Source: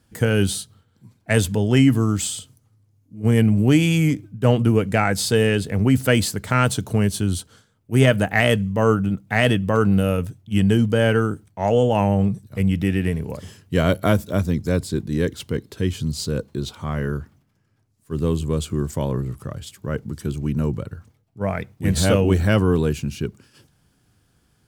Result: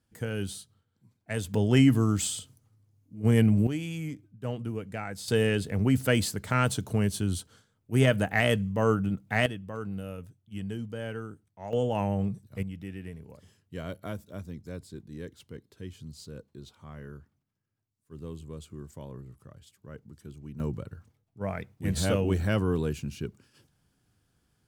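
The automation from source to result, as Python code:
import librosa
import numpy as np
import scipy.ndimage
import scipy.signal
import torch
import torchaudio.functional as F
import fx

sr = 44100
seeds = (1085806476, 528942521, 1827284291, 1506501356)

y = fx.gain(x, sr, db=fx.steps((0.0, -14.0), (1.54, -5.0), (3.67, -17.0), (5.28, -7.0), (9.46, -18.5), (11.73, -10.0), (12.63, -19.0), (20.6, -9.0)))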